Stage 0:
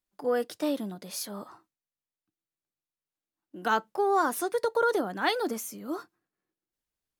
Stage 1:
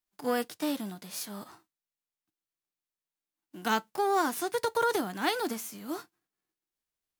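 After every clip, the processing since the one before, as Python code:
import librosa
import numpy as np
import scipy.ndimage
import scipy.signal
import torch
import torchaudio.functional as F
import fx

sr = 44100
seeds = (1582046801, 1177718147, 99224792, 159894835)

y = fx.envelope_flatten(x, sr, power=0.6)
y = fx.notch(y, sr, hz=550.0, q=12.0)
y = y * 10.0 ** (-2.0 / 20.0)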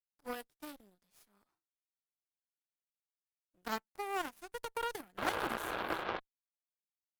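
y = fx.spec_paint(x, sr, seeds[0], shape='noise', start_s=5.17, length_s=1.03, low_hz=310.0, high_hz=1700.0, level_db=-27.0)
y = fx.dynamic_eq(y, sr, hz=4300.0, q=0.81, threshold_db=-49.0, ratio=4.0, max_db=-5)
y = fx.cheby_harmonics(y, sr, harmonics=(3, 5, 7, 8), levels_db=(-17, -36, -21, -31), full_scale_db=-12.0)
y = y * 10.0 ** (-4.5 / 20.0)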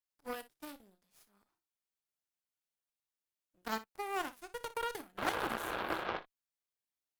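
y = fx.room_early_taps(x, sr, ms=(31, 59), db=(-16.0, -16.0))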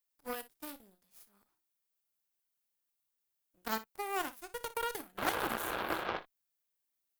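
y = fx.high_shelf(x, sr, hz=11000.0, db=12.0)
y = y * 10.0 ** (1.0 / 20.0)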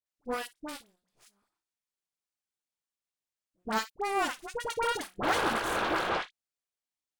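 y = fx.leveller(x, sr, passes=2)
y = scipy.signal.savgol_filter(y, 9, 4, mode='constant')
y = fx.dispersion(y, sr, late='highs', ms=62.0, hz=1100.0)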